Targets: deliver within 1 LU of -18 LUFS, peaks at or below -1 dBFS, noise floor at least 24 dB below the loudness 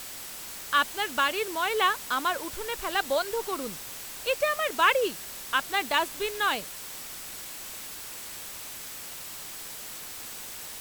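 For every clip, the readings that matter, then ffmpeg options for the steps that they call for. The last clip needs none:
steady tone 7900 Hz; tone level -52 dBFS; noise floor -41 dBFS; noise floor target -54 dBFS; loudness -29.5 LUFS; peak -8.5 dBFS; loudness target -18.0 LUFS
-> -af "bandreject=f=7.9k:w=30"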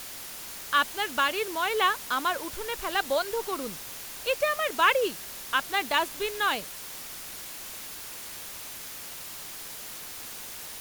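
steady tone none; noise floor -41 dBFS; noise floor target -54 dBFS
-> -af "afftdn=nr=13:nf=-41"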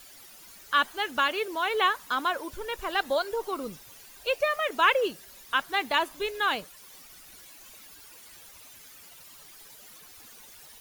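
noise floor -50 dBFS; noise floor target -52 dBFS
-> -af "afftdn=nr=6:nf=-50"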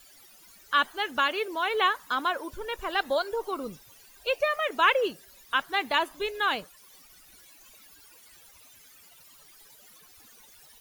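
noise floor -55 dBFS; loudness -27.5 LUFS; peak -9.0 dBFS; loudness target -18.0 LUFS
-> -af "volume=9.5dB,alimiter=limit=-1dB:level=0:latency=1"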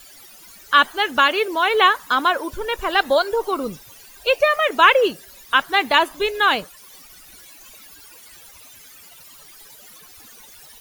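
loudness -18.0 LUFS; peak -1.0 dBFS; noise floor -45 dBFS

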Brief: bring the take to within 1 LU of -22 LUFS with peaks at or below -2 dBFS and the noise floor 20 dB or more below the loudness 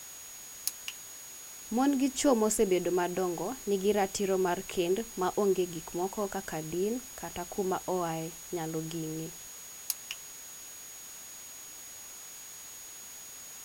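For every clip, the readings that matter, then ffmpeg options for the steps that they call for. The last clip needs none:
steady tone 6700 Hz; tone level -46 dBFS; noise floor -47 dBFS; noise floor target -53 dBFS; loudness -33.0 LUFS; peak -9.5 dBFS; loudness target -22.0 LUFS
-> -af "bandreject=f=6.7k:w=30"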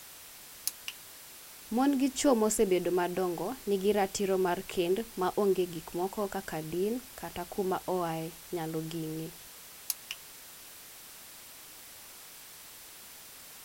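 steady tone none; noise floor -50 dBFS; noise floor target -52 dBFS
-> -af "afftdn=nr=6:nf=-50"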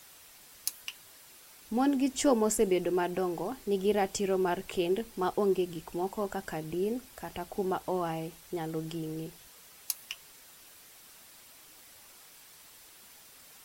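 noise floor -55 dBFS; loudness -32.0 LUFS; peak -10.0 dBFS; loudness target -22.0 LUFS
-> -af "volume=10dB,alimiter=limit=-2dB:level=0:latency=1"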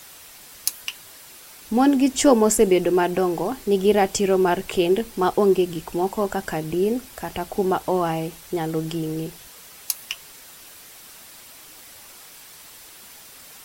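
loudness -22.0 LUFS; peak -2.0 dBFS; noise floor -45 dBFS

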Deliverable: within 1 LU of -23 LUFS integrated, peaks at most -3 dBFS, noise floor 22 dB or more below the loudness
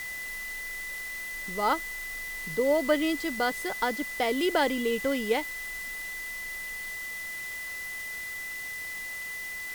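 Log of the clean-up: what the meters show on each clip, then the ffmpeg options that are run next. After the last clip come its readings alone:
steady tone 2000 Hz; tone level -35 dBFS; noise floor -37 dBFS; noise floor target -53 dBFS; loudness -30.5 LUFS; peak -11.5 dBFS; loudness target -23.0 LUFS
-> -af "bandreject=f=2k:w=30"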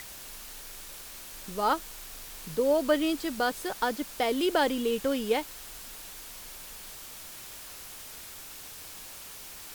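steady tone none; noise floor -45 dBFS; noise floor target -54 dBFS
-> -af "afftdn=nr=9:nf=-45"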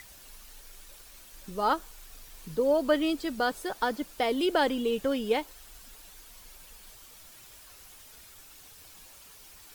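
noise floor -52 dBFS; loudness -28.5 LUFS; peak -11.5 dBFS; loudness target -23.0 LUFS
-> -af "volume=5.5dB"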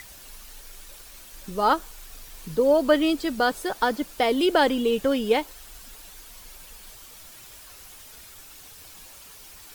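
loudness -23.0 LUFS; peak -6.0 dBFS; noise floor -46 dBFS

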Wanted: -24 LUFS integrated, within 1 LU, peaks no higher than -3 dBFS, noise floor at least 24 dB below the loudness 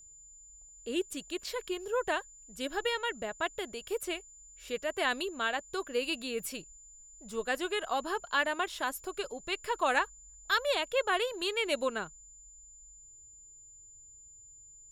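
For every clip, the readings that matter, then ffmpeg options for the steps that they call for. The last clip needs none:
steady tone 7100 Hz; tone level -52 dBFS; loudness -33.5 LUFS; peak -13.5 dBFS; loudness target -24.0 LUFS
-> -af "bandreject=f=7.1k:w=30"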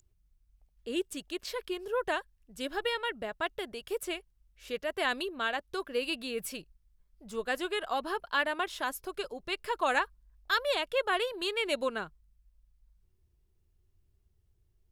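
steady tone none; loudness -33.5 LUFS; peak -13.5 dBFS; loudness target -24.0 LUFS
-> -af "volume=9.5dB"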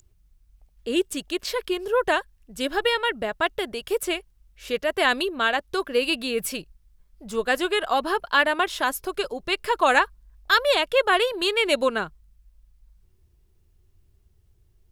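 loudness -24.0 LUFS; peak -4.0 dBFS; noise floor -62 dBFS

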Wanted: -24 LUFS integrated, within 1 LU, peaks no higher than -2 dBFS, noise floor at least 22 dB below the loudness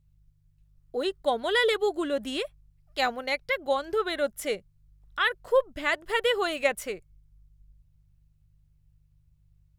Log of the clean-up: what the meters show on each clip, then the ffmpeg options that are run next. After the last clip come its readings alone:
hum 50 Hz; harmonics up to 150 Hz; hum level -61 dBFS; loudness -28.0 LUFS; peak -10.5 dBFS; loudness target -24.0 LUFS
-> -af "bandreject=f=50:t=h:w=4,bandreject=f=100:t=h:w=4,bandreject=f=150:t=h:w=4"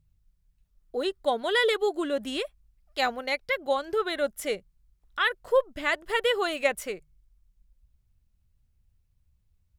hum none; loudness -28.0 LUFS; peak -10.0 dBFS; loudness target -24.0 LUFS
-> -af "volume=4dB"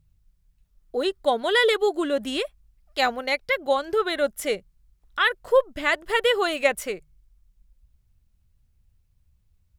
loudness -24.0 LUFS; peak -6.0 dBFS; noise floor -66 dBFS

